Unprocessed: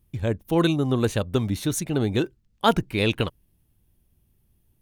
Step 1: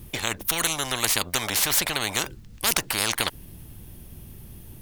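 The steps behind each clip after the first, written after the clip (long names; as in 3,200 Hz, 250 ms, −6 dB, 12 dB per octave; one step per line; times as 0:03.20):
every bin compressed towards the loudest bin 10 to 1
level +3 dB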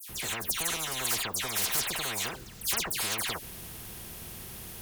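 notch comb filter 290 Hz
all-pass dispersion lows, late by 94 ms, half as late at 2,900 Hz
every bin compressed towards the loudest bin 2 to 1
level −5 dB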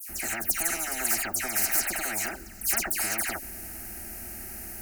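phaser with its sweep stopped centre 700 Hz, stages 8
level +5.5 dB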